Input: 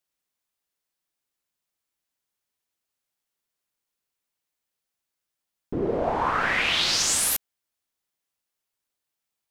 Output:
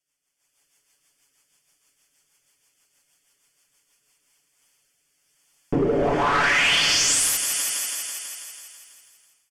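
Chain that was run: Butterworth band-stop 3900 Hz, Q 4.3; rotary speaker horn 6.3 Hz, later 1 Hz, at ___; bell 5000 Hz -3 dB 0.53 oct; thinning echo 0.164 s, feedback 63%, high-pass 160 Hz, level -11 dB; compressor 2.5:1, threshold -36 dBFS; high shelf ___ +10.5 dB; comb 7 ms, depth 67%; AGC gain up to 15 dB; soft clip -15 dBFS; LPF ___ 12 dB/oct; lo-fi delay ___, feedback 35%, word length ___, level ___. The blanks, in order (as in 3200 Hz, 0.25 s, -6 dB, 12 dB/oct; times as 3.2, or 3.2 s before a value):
3.88, 2300 Hz, 9300 Hz, 0.151 s, 9-bit, -15 dB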